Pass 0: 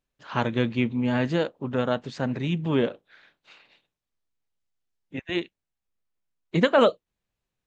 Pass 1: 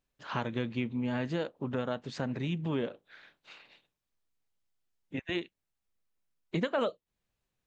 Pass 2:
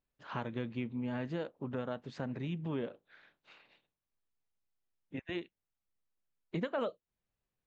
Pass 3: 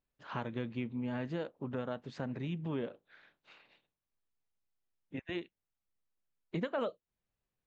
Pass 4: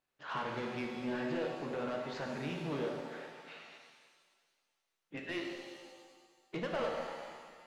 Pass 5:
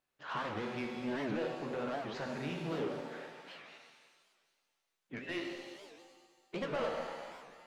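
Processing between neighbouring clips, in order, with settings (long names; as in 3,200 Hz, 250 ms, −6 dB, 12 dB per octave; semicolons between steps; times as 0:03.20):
downward compressor 2.5 to 1, threshold −33 dBFS, peak gain reduction 12.5 dB
high-shelf EQ 3,900 Hz −9.5 dB; level −4.5 dB
no processing that can be heard
mid-hump overdrive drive 21 dB, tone 3,400 Hz, clips at −22 dBFS; reverb with rising layers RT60 1.7 s, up +7 semitones, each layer −8 dB, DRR 0.5 dB; level −7.5 dB
wow of a warped record 78 rpm, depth 250 cents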